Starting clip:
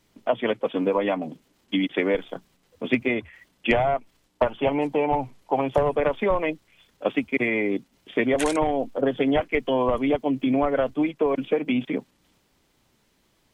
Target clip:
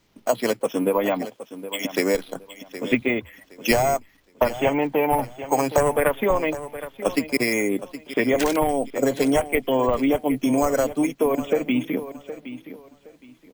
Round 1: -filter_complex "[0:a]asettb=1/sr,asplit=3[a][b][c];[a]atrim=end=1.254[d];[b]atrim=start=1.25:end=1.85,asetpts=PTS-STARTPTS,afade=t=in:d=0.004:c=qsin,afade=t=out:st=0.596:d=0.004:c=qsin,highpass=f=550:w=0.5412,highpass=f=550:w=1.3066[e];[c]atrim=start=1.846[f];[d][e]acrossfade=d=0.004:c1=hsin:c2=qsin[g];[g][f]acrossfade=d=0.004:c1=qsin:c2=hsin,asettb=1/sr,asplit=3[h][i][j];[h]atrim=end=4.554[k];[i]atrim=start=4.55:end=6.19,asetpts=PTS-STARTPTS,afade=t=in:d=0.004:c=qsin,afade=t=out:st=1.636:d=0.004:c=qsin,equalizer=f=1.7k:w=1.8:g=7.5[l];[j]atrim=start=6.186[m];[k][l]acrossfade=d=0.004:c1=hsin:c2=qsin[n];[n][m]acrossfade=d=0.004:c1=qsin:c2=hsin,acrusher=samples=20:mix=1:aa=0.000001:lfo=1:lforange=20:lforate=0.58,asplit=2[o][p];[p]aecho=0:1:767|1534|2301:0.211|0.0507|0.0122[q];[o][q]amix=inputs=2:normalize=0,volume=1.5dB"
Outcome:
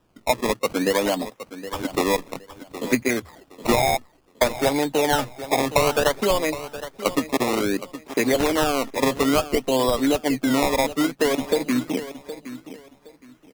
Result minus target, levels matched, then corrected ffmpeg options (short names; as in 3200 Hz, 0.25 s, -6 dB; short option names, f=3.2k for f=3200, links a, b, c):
decimation with a swept rate: distortion +14 dB
-filter_complex "[0:a]asettb=1/sr,asplit=3[a][b][c];[a]atrim=end=1.254[d];[b]atrim=start=1.25:end=1.85,asetpts=PTS-STARTPTS,afade=t=in:d=0.004:c=qsin,afade=t=out:st=0.596:d=0.004:c=qsin,highpass=f=550:w=0.5412,highpass=f=550:w=1.3066[e];[c]atrim=start=1.846[f];[d][e]acrossfade=d=0.004:c1=hsin:c2=qsin[g];[g][f]acrossfade=d=0.004:c1=qsin:c2=hsin,asettb=1/sr,asplit=3[h][i][j];[h]atrim=end=4.554[k];[i]atrim=start=4.55:end=6.19,asetpts=PTS-STARTPTS,afade=t=in:d=0.004:c=qsin,afade=t=out:st=1.636:d=0.004:c=qsin,equalizer=f=1.7k:w=1.8:g=7.5[l];[j]atrim=start=6.186[m];[k][l]acrossfade=d=0.004:c1=hsin:c2=qsin[n];[n][m]acrossfade=d=0.004:c1=qsin:c2=hsin,acrusher=samples=4:mix=1:aa=0.000001:lfo=1:lforange=4:lforate=0.58,asplit=2[o][p];[p]aecho=0:1:767|1534|2301:0.211|0.0507|0.0122[q];[o][q]amix=inputs=2:normalize=0,volume=1.5dB"